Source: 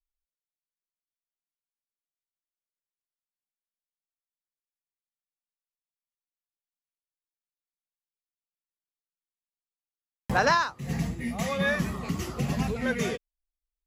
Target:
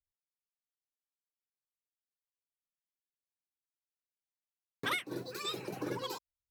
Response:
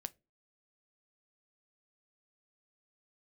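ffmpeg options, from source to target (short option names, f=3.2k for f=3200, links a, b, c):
-filter_complex "[0:a]asetrate=93933,aresample=44100,acrossover=split=2200[a][b];[a]aeval=exprs='val(0)*(1-0.5/2+0.5/2*cos(2*PI*1.2*n/s))':c=same[c];[b]aeval=exprs='val(0)*(1-0.5/2-0.5/2*cos(2*PI*1.2*n/s))':c=same[d];[c][d]amix=inputs=2:normalize=0,volume=-8.5dB"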